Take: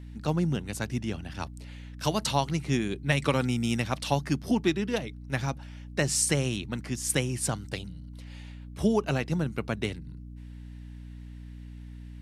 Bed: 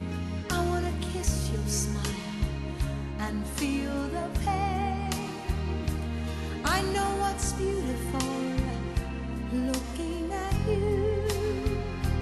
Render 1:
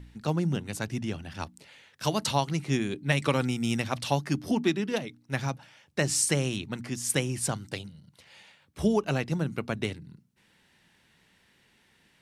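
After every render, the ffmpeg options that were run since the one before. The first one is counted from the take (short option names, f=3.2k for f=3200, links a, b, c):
-af "bandreject=f=60:t=h:w=4,bandreject=f=120:t=h:w=4,bandreject=f=180:t=h:w=4,bandreject=f=240:t=h:w=4,bandreject=f=300:t=h:w=4"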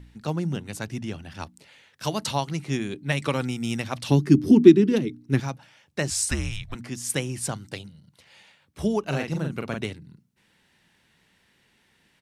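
-filter_complex "[0:a]asettb=1/sr,asplit=3[a][b][c];[a]atrim=end=4.094[d];[b]atrim=start=4.09:end=5.4,asetpts=PTS-STARTPTS,afade=t=in:d=0.004:c=qsin,afade=t=out:st=1.306:d=0.004:c=qsin,lowshelf=f=480:t=q:w=3:g=9[e];[c]atrim=start=5.396[f];[d][e]acrossfade=d=0.004:c1=hsin:c2=qsin[g];[g][f]acrossfade=d=0.004:c1=qsin:c2=hsin,asettb=1/sr,asplit=3[h][i][j];[h]atrim=end=6.104[k];[i]atrim=start=6.1:end=6.75,asetpts=PTS-STARTPTS,afade=t=in:d=0.004:c=qsin,afade=t=out:st=0.646:d=0.004:c=qsin,afreqshift=-220[l];[j]atrim=start=6.746[m];[k][l]acrossfade=d=0.004:c1=hsin:c2=qsin[n];[n][m]acrossfade=d=0.004:c1=qsin:c2=hsin,asplit=3[o][p][q];[o]afade=t=out:st=9.1:d=0.02[r];[p]asplit=2[s][t];[t]adelay=43,volume=-4dB[u];[s][u]amix=inputs=2:normalize=0,afade=t=in:st=9.1:d=0.02,afade=t=out:st=9.81:d=0.02[v];[q]afade=t=in:st=9.81:d=0.02[w];[r][v][w]amix=inputs=3:normalize=0"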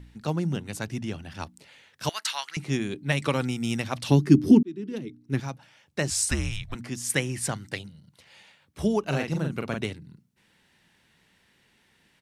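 -filter_complex "[0:a]asettb=1/sr,asplit=3[a][b][c];[a]atrim=end=2.094[d];[b]atrim=start=2.09:end=2.57,asetpts=PTS-STARTPTS,afade=t=in:d=0.004:c=qsin,afade=t=out:st=0.476:d=0.004:c=qsin,highpass=f=1.6k:t=q:w=2.1[e];[c]atrim=start=2.566[f];[d][e]acrossfade=d=0.004:c1=hsin:c2=qsin[g];[g][f]acrossfade=d=0.004:c1=qsin:c2=hsin,asettb=1/sr,asplit=3[h][i][j];[h]atrim=end=7.104[k];[i]atrim=start=7.1:end=7.8,asetpts=PTS-STARTPTS,afade=t=in:d=0.004:c=qsin,afade=t=out:st=0.696:d=0.004:c=qsin,equalizer=f=1.9k:w=2.6:g=7[l];[j]atrim=start=7.796[m];[k][l]acrossfade=d=0.004:c1=hsin:c2=qsin[n];[n][m]acrossfade=d=0.004:c1=qsin:c2=hsin,asplit=2[o][p];[o]atrim=end=4.63,asetpts=PTS-STARTPTS,afade=t=out:st=4.626:d=0.004:c=hsin[q];[p]atrim=start=4.63,asetpts=PTS-STARTPTS,afade=t=in:d=1.81:c=qsin[r];[q][r]concat=n=2:v=0:a=1"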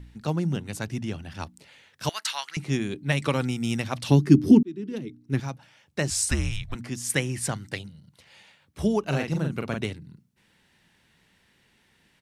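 -af "lowshelf=f=130:g=3.5"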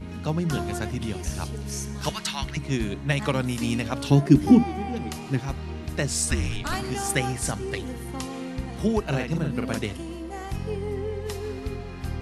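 -filter_complex "[1:a]volume=-3.5dB[a];[0:a][a]amix=inputs=2:normalize=0"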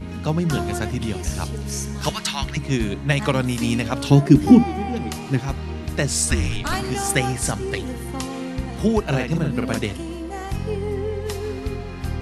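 -af "volume=4.5dB,alimiter=limit=-1dB:level=0:latency=1"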